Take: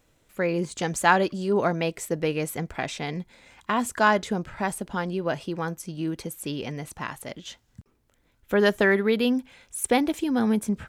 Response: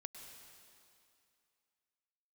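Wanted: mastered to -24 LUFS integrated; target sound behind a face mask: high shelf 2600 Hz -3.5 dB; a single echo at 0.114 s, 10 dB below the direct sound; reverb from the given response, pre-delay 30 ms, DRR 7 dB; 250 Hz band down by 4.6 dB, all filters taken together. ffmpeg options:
-filter_complex "[0:a]equalizer=f=250:t=o:g=-6,aecho=1:1:114:0.316,asplit=2[a][b];[1:a]atrim=start_sample=2205,adelay=30[c];[b][c]afir=irnorm=-1:irlink=0,volume=-2.5dB[d];[a][d]amix=inputs=2:normalize=0,highshelf=f=2.6k:g=-3.5,volume=3dB"

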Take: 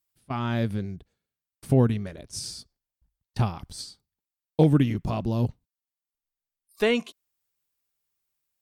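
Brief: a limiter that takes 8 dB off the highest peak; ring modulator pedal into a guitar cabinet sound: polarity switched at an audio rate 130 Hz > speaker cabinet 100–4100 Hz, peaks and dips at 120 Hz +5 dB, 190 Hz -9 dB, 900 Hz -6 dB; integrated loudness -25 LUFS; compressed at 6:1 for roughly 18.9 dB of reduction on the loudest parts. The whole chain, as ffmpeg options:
-af "acompressor=threshold=-35dB:ratio=6,alimiter=level_in=5.5dB:limit=-24dB:level=0:latency=1,volume=-5.5dB,aeval=exprs='val(0)*sgn(sin(2*PI*130*n/s))':c=same,highpass=100,equalizer=f=120:t=q:w=4:g=5,equalizer=f=190:t=q:w=4:g=-9,equalizer=f=900:t=q:w=4:g=-6,lowpass=f=4.1k:w=0.5412,lowpass=f=4.1k:w=1.3066,volume=19.5dB"

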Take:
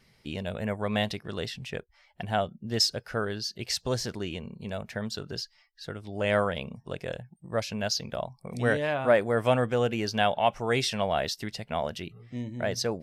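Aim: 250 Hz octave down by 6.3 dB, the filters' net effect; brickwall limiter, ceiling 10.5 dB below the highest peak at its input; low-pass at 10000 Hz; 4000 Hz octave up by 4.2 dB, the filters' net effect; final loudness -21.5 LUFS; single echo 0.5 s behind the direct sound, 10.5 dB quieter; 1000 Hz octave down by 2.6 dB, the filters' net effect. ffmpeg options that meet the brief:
-af "lowpass=10k,equalizer=f=250:t=o:g=-8,equalizer=f=1k:t=o:g=-3.5,equalizer=f=4k:t=o:g=6,alimiter=limit=-19dB:level=0:latency=1,aecho=1:1:500:0.299,volume=10.5dB"

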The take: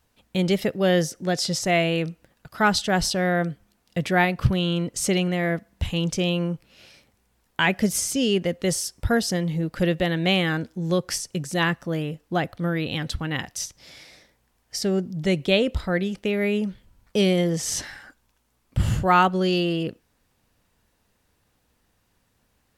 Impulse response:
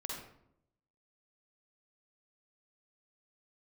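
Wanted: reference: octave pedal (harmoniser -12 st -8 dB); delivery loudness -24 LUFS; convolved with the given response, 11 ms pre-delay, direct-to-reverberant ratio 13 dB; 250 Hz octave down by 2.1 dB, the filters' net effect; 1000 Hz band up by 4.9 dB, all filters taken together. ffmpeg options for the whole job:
-filter_complex "[0:a]equalizer=f=250:t=o:g=-4,equalizer=f=1k:t=o:g=7,asplit=2[a][b];[1:a]atrim=start_sample=2205,adelay=11[c];[b][c]afir=irnorm=-1:irlink=0,volume=-13dB[d];[a][d]amix=inputs=2:normalize=0,asplit=2[e][f];[f]asetrate=22050,aresample=44100,atempo=2,volume=-8dB[g];[e][g]amix=inputs=2:normalize=0,volume=-1.5dB"

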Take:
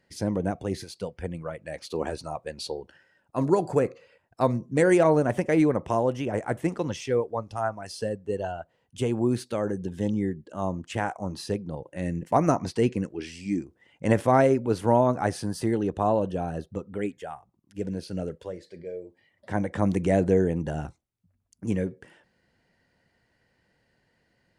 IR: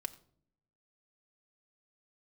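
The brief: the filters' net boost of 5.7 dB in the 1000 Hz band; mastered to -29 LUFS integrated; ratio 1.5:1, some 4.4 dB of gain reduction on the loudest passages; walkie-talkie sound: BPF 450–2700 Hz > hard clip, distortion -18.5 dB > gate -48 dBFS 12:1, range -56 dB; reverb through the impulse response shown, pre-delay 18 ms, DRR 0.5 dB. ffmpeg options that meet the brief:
-filter_complex "[0:a]equalizer=f=1k:t=o:g=8,acompressor=threshold=-24dB:ratio=1.5,asplit=2[a][b];[1:a]atrim=start_sample=2205,adelay=18[c];[b][c]afir=irnorm=-1:irlink=0,volume=1dB[d];[a][d]amix=inputs=2:normalize=0,highpass=450,lowpass=2.7k,asoftclip=type=hard:threshold=-13.5dB,agate=range=-56dB:threshold=-48dB:ratio=12,volume=-1dB"

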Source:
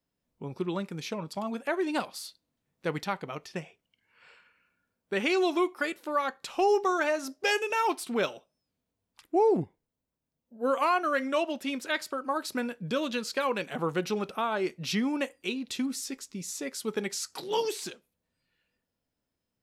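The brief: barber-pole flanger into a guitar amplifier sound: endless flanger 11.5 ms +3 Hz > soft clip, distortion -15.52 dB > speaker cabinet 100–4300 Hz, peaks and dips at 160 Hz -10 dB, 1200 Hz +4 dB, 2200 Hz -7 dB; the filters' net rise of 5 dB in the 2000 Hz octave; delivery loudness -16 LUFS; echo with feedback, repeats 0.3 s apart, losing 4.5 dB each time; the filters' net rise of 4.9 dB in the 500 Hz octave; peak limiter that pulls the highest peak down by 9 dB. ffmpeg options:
-filter_complex "[0:a]equalizer=f=500:t=o:g=6,equalizer=f=2k:t=o:g=8.5,alimiter=limit=-18.5dB:level=0:latency=1,aecho=1:1:300|600|900|1200|1500|1800|2100|2400|2700:0.596|0.357|0.214|0.129|0.0772|0.0463|0.0278|0.0167|0.01,asplit=2[a][b];[b]adelay=11.5,afreqshift=3[c];[a][c]amix=inputs=2:normalize=1,asoftclip=threshold=-24.5dB,highpass=100,equalizer=f=160:t=q:w=4:g=-10,equalizer=f=1.2k:t=q:w=4:g=4,equalizer=f=2.2k:t=q:w=4:g=-7,lowpass=f=4.3k:w=0.5412,lowpass=f=4.3k:w=1.3066,volume=17.5dB"

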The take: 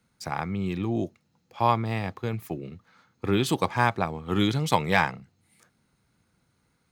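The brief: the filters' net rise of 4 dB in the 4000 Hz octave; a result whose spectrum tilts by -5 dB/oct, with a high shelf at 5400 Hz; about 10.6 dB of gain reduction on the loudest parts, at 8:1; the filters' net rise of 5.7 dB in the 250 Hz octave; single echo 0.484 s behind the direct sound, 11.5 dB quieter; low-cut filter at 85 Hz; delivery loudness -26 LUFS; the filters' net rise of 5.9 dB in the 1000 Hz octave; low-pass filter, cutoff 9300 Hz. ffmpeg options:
-af "highpass=85,lowpass=9.3k,equalizer=f=250:t=o:g=7.5,equalizer=f=1k:t=o:g=6.5,equalizer=f=4k:t=o:g=7.5,highshelf=f=5.4k:g=-8,acompressor=threshold=-21dB:ratio=8,aecho=1:1:484:0.266,volume=2.5dB"

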